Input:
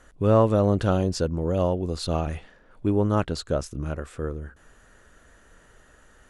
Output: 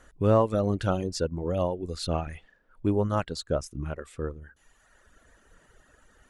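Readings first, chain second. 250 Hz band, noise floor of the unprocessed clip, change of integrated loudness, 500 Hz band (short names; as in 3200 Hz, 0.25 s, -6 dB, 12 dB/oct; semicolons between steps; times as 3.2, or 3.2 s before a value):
-4.5 dB, -56 dBFS, -3.5 dB, -3.0 dB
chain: reverb removal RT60 1.2 s; gain -1.5 dB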